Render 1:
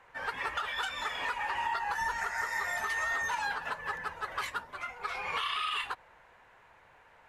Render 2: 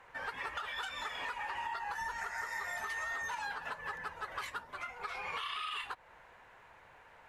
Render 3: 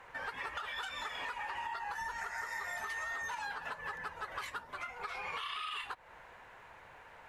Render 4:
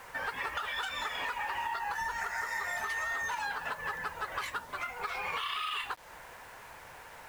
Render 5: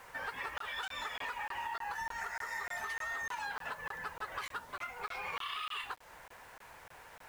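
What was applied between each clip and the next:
compression 2:1, threshold -43 dBFS, peak gain reduction 8 dB; trim +1 dB
compression 1.5:1, threshold -48 dBFS, peak gain reduction 5 dB; trim +3.5 dB
word length cut 10-bit, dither none; trim +5 dB
crackling interface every 0.30 s, samples 1024, zero, from 0.58 s; trim -4.5 dB

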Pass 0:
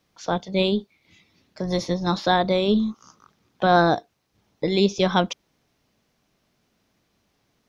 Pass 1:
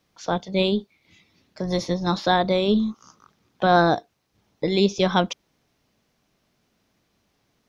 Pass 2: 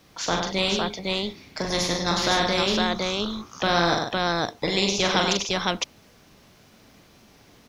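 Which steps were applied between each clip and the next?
no audible change
multi-tap echo 41/97/141/508 ms -5.5/-9.5/-16.5/-4.5 dB; spectrum-flattening compressor 2:1; trim -5 dB

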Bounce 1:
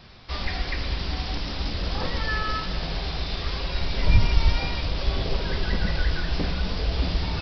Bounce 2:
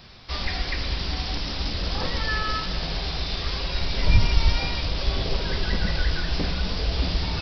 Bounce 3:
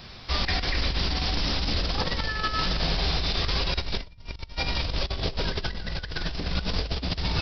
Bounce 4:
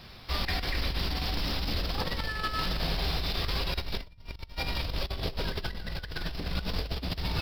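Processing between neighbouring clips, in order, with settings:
treble shelf 5.3 kHz +9 dB
compressor with a negative ratio -27 dBFS, ratio -0.5
median filter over 5 samples; trim -4 dB

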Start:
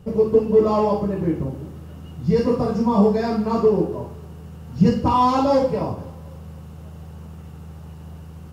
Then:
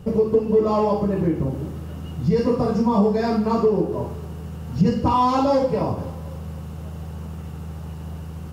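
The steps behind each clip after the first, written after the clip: compression 2:1, threshold -25 dBFS, peak gain reduction 8.5 dB; trim +5 dB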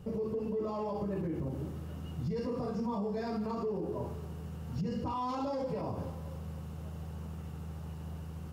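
peak limiter -19 dBFS, peak gain reduction 11.5 dB; trim -9 dB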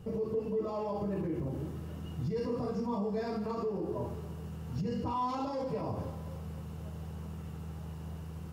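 reverberation, pre-delay 3 ms, DRR 8 dB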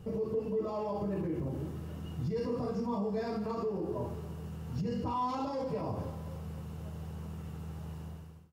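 fade out at the end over 0.55 s

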